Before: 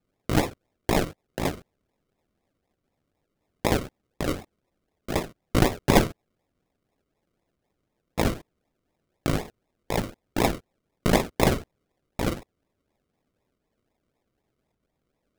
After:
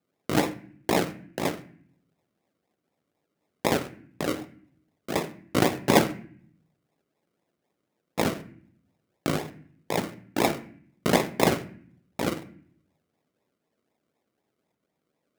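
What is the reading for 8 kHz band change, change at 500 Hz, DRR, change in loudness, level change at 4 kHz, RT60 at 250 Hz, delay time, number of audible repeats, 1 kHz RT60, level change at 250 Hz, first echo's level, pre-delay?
0.0 dB, 0.0 dB, 10.5 dB, -0.5 dB, 0.0 dB, 0.90 s, none, none, 0.50 s, -0.5 dB, none, 11 ms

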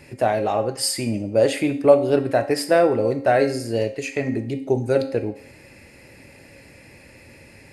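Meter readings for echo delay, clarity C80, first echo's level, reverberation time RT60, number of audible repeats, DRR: none, 15.0 dB, none, 0.60 s, none, 6.5 dB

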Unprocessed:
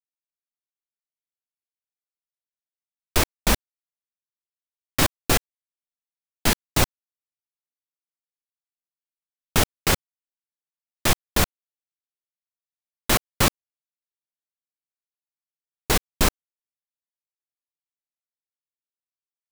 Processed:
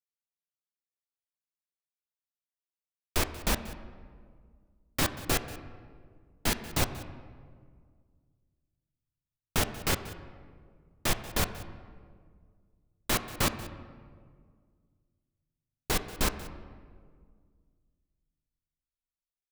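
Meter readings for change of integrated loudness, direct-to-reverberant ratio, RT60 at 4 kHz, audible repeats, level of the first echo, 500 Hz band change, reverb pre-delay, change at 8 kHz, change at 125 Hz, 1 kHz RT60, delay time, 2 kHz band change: -8.0 dB, 9.5 dB, 1.1 s, 1, -18.0 dB, -7.5 dB, 9 ms, -8.0 dB, -7.0 dB, 1.7 s, 0.185 s, -7.5 dB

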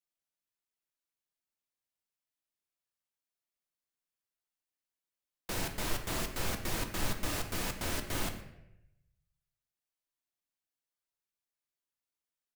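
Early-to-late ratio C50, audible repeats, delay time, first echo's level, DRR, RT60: 8.5 dB, 1, 0.117 s, -18.0 dB, 5.0 dB, 0.85 s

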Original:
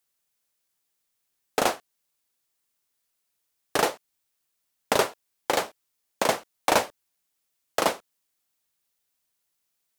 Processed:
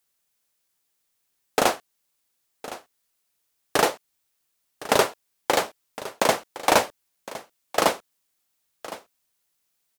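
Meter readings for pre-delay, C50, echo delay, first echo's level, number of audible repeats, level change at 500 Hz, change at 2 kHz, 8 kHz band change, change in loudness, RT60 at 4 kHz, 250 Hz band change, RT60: none, none, 1.062 s, -16.0 dB, 1, +3.0 dB, +3.0 dB, +3.0 dB, +3.0 dB, none, +3.0 dB, none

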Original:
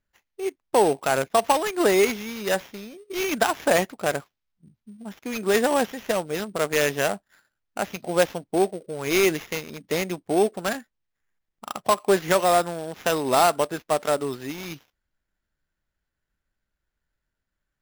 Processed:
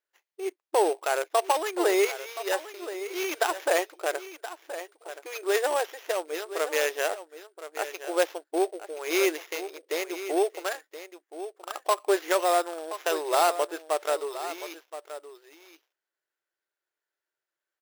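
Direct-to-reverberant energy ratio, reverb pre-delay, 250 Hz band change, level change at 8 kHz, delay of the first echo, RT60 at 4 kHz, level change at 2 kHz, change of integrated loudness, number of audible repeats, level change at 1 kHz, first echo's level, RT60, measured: none, none, -7.5 dB, -4.0 dB, 1.024 s, none, -4.0 dB, -4.5 dB, 1, -4.0 dB, -12.5 dB, none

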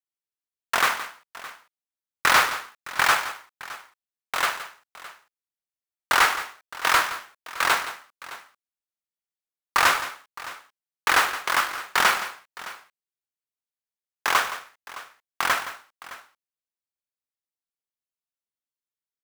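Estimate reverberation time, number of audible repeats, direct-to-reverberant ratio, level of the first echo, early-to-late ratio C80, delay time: none, 2, none, -13.5 dB, none, 0.169 s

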